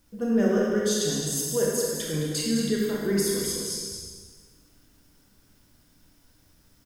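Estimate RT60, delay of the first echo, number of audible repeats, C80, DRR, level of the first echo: 1.5 s, 0.213 s, 1, 0.0 dB, -4.0 dB, -7.0 dB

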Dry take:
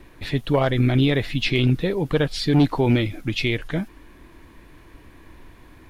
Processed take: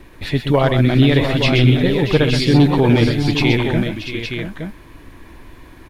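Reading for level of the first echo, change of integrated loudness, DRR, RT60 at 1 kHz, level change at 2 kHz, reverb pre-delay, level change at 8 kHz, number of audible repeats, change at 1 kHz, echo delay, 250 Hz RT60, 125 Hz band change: -7.5 dB, +6.0 dB, none, none, +6.5 dB, none, +6.5 dB, 4, +6.0 dB, 0.126 s, none, +7.0 dB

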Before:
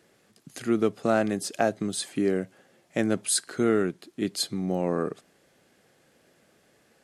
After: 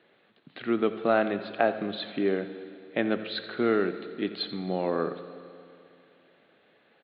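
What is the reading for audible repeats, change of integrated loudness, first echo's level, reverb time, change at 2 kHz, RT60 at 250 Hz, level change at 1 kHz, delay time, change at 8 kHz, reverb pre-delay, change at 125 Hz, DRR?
1, -1.5 dB, -16.0 dB, 2.6 s, +1.5 dB, 2.6 s, +1.0 dB, 87 ms, under -40 dB, 11 ms, -6.0 dB, 9.5 dB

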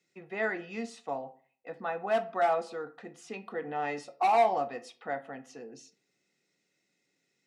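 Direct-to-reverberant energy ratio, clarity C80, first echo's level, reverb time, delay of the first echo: 11.0 dB, 21.5 dB, none, 0.50 s, none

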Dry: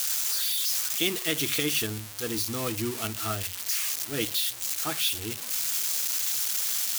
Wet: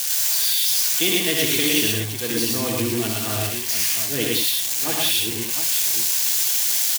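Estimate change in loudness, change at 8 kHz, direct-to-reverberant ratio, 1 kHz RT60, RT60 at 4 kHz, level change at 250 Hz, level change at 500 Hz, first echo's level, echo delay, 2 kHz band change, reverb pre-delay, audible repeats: +8.0 dB, +8.0 dB, none, none, none, +8.5 dB, +7.5 dB, -6.0 dB, 65 ms, +7.5 dB, none, 4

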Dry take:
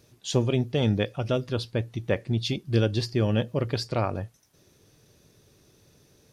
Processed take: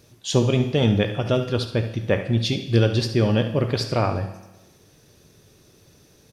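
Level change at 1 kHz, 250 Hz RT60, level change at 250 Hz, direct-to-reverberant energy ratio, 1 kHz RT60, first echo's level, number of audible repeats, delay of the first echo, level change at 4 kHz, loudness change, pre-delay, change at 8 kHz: +5.5 dB, 1.1 s, +5.0 dB, 6.0 dB, 1.1 s, -12.0 dB, 1, 71 ms, +5.5 dB, +5.0 dB, 11 ms, +5.5 dB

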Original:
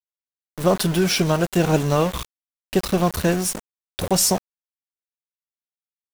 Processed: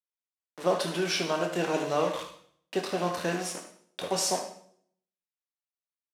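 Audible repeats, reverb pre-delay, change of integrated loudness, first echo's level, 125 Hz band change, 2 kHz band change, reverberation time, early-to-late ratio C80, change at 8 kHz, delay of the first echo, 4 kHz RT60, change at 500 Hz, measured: 1, 10 ms, -9.0 dB, -11.0 dB, -16.5 dB, -5.5 dB, 0.60 s, 10.0 dB, -10.0 dB, 75 ms, 0.55 s, -7.0 dB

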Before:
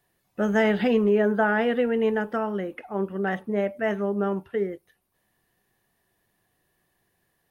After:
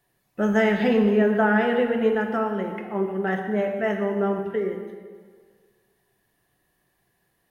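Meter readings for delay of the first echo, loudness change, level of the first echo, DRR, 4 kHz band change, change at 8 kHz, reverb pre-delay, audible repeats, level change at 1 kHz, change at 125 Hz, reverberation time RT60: none, +2.0 dB, none, 3.5 dB, +1.0 dB, n/a, 3 ms, none, +2.5 dB, +2.5 dB, 1.7 s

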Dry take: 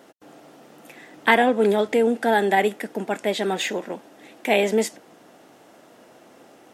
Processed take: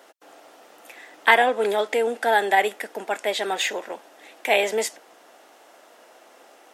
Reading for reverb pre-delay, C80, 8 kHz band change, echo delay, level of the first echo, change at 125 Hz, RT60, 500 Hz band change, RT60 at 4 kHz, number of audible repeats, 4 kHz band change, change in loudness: none, none, +2.0 dB, none, none, n/a, none, -2.5 dB, none, none, +2.0 dB, -0.5 dB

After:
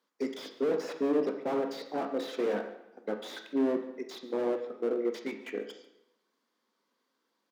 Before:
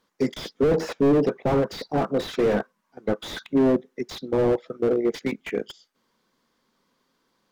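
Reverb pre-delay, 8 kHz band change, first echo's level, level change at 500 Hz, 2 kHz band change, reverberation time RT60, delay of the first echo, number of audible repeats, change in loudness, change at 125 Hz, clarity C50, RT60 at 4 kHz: 19 ms, n/a, -18.5 dB, -8.0 dB, -8.0 dB, 0.85 s, 0.142 s, 1, -8.5 dB, under -20 dB, 8.5 dB, 0.75 s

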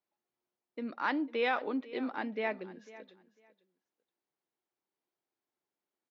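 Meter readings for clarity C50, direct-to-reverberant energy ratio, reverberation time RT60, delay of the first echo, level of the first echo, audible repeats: none, none, none, 0.499 s, -18.0 dB, 2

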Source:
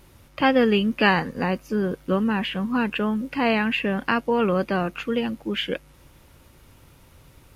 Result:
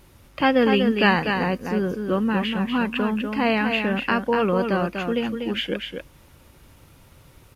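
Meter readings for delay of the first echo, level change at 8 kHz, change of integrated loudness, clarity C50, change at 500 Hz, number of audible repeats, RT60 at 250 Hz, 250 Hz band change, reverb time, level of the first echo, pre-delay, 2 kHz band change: 0.244 s, n/a, +1.0 dB, none, +1.0 dB, 1, none, +1.0 dB, none, -6.0 dB, none, +1.0 dB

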